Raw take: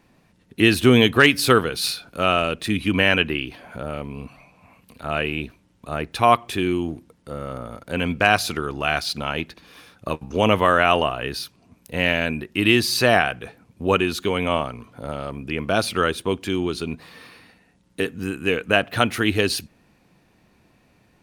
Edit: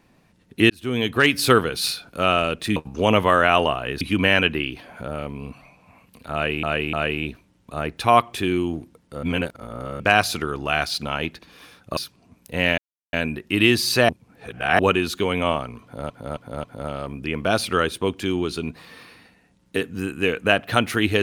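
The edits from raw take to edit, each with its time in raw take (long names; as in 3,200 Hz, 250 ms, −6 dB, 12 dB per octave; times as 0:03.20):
0:00.70–0:01.46: fade in
0:05.08–0:05.38: repeat, 3 plays
0:07.38–0:08.15: reverse
0:10.12–0:11.37: move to 0:02.76
0:12.18: splice in silence 0.35 s
0:13.14–0:13.84: reverse
0:14.88–0:15.15: repeat, 4 plays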